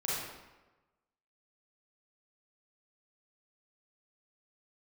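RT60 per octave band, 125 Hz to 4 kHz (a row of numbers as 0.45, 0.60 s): 1.1, 1.1, 1.1, 1.1, 1.0, 0.80 s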